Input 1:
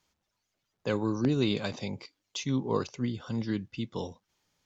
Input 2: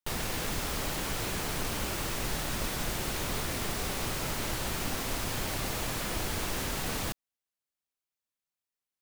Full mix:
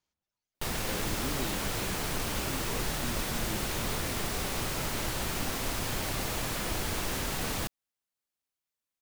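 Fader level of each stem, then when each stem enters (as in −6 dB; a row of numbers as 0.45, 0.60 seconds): −11.5, +0.5 decibels; 0.00, 0.55 seconds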